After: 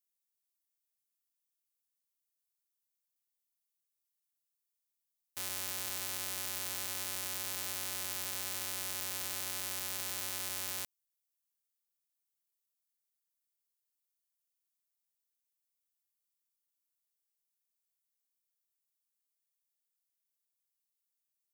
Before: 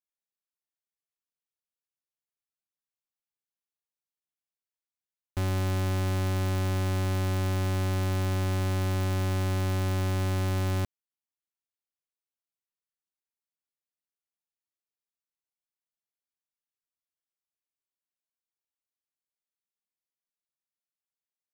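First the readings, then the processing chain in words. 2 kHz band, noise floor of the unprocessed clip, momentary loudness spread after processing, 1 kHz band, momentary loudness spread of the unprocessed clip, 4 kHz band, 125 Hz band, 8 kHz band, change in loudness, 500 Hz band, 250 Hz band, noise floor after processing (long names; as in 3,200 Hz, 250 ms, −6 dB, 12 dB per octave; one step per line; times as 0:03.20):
−6.0 dB, below −85 dBFS, 1 LU, −11.5 dB, 1 LU, 0.0 dB, −31.5 dB, +6.0 dB, −7.5 dB, −18.0 dB, −23.5 dB, below −85 dBFS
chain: first difference
level +5.5 dB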